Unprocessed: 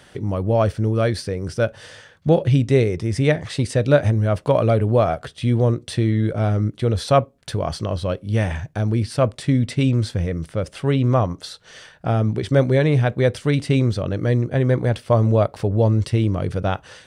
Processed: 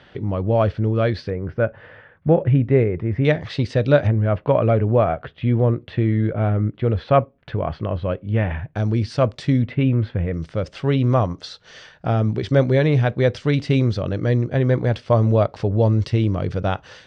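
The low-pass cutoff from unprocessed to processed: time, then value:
low-pass 24 dB/octave
4 kHz
from 1.30 s 2.2 kHz
from 3.25 s 4.8 kHz
from 4.07 s 2.8 kHz
from 8.76 s 6.1 kHz
from 9.62 s 2.7 kHz
from 10.34 s 5.9 kHz

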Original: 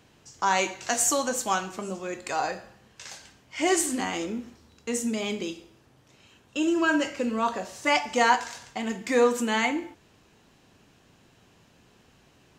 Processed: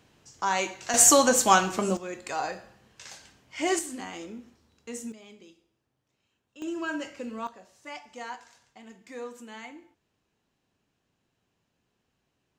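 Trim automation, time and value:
-3 dB
from 0.94 s +7 dB
from 1.97 s -3 dB
from 3.79 s -9 dB
from 5.12 s -20 dB
from 6.62 s -9 dB
from 7.47 s -18 dB

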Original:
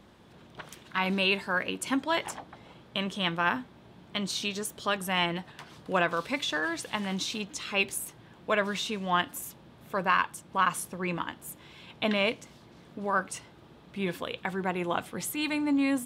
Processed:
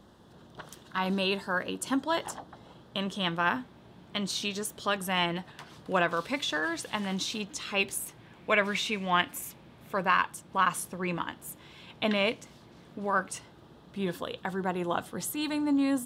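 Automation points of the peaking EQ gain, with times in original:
peaking EQ 2.3 kHz 0.4 oct
2.62 s -13.5 dB
3.54 s -2.5 dB
7.91 s -2.5 dB
8.49 s +9.5 dB
9.20 s +9.5 dB
10.29 s -1.5 dB
13.16 s -1.5 dB
14.16 s -11.5 dB

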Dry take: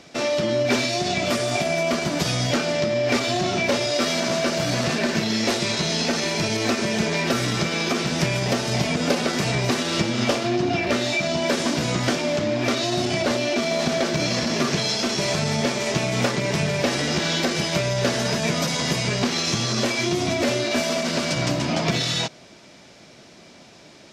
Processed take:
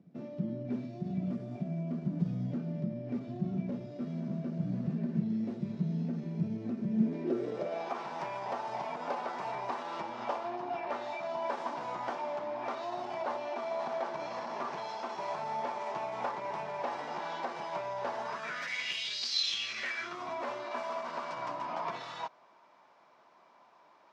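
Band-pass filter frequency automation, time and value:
band-pass filter, Q 4.8
6.89 s 180 Hz
7.96 s 910 Hz
18.22 s 910 Hz
19.28 s 4.8 kHz
20.28 s 1 kHz

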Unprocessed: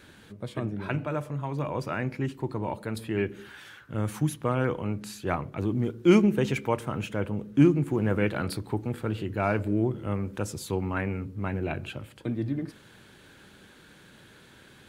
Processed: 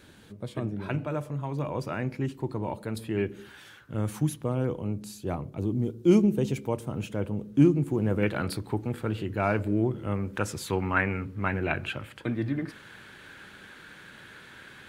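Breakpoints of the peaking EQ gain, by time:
peaking EQ 1.7 kHz 1.8 oct
-3.5 dB
from 4.43 s -13 dB
from 6.97 s -7 dB
from 8.23 s +0.5 dB
from 10.36 s +9 dB

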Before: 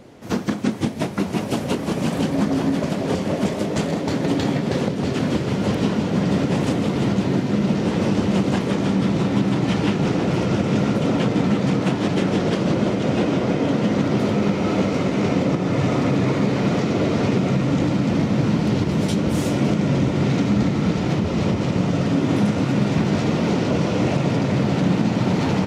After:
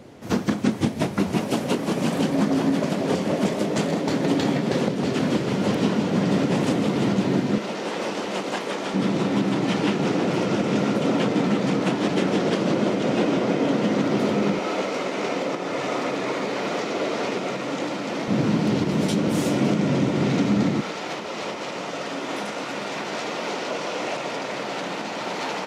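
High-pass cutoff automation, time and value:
44 Hz
from 1.40 s 160 Hz
from 7.58 s 490 Hz
from 8.94 s 210 Hz
from 14.59 s 450 Hz
from 18.28 s 170 Hz
from 20.81 s 600 Hz

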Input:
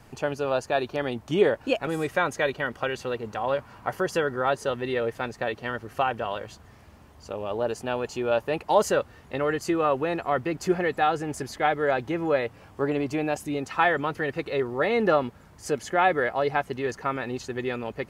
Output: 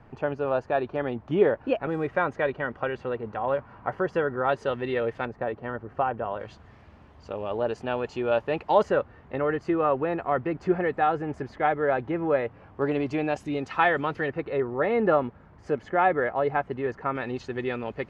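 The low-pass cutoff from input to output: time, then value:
1.8 kHz
from 4.49 s 3.1 kHz
from 5.25 s 1.3 kHz
from 6.40 s 3.3 kHz
from 8.83 s 1.9 kHz
from 12.82 s 4 kHz
from 14.28 s 1.8 kHz
from 17.15 s 3.5 kHz

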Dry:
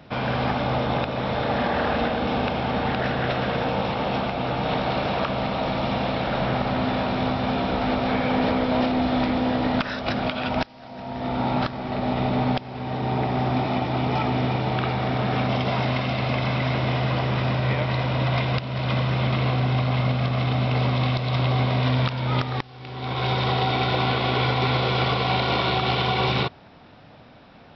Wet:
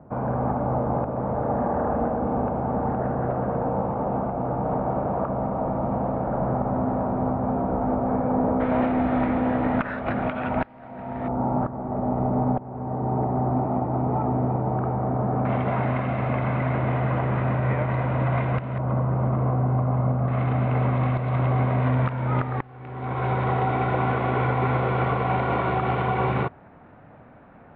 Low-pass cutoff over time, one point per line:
low-pass 24 dB/octave
1.1 kHz
from 8.60 s 2 kHz
from 11.28 s 1.1 kHz
from 15.45 s 1.9 kHz
from 18.78 s 1.2 kHz
from 20.28 s 1.9 kHz

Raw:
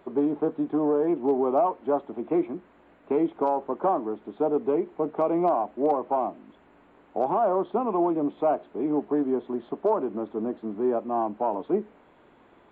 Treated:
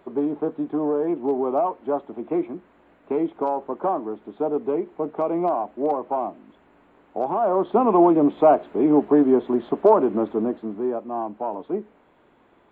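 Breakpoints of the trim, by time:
7.36 s +0.5 dB
7.84 s +8.5 dB
10.25 s +8.5 dB
10.96 s -1.5 dB

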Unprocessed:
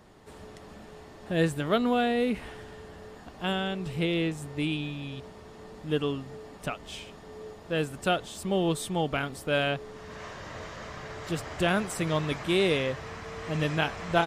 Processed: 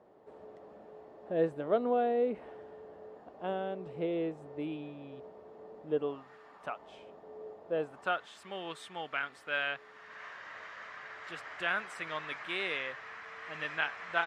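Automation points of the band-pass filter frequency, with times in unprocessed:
band-pass filter, Q 1.6
6.03 s 550 Hz
6.35 s 1.6 kHz
7.04 s 580 Hz
7.74 s 580 Hz
8.28 s 1.7 kHz

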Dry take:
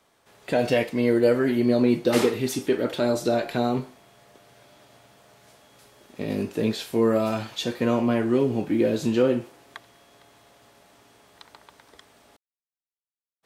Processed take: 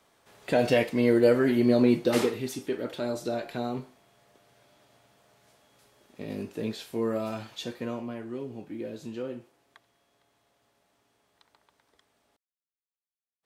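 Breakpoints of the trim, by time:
1.89 s -1 dB
2.55 s -8 dB
7.67 s -8 dB
8.14 s -15 dB

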